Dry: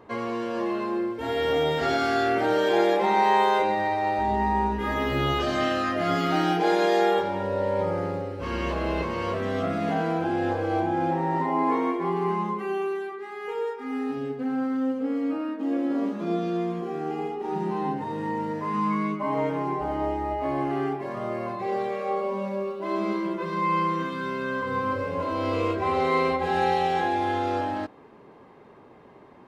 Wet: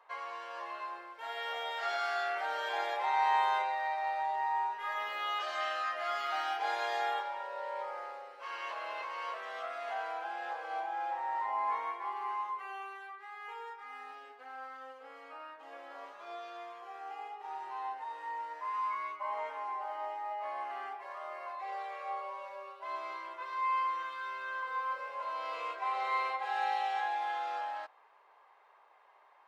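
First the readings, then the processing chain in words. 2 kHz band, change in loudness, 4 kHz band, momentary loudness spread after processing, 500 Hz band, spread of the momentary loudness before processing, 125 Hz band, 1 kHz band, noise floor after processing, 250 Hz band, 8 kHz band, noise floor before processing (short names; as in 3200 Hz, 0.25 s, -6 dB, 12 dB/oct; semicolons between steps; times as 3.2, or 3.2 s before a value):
-6.5 dB, -10.5 dB, -8.0 dB, 13 LU, -18.0 dB, 8 LU, under -40 dB, -7.5 dB, -62 dBFS, -36.5 dB, n/a, -50 dBFS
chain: HPF 760 Hz 24 dB/oct; high shelf 3900 Hz -6.5 dB; gain -5.5 dB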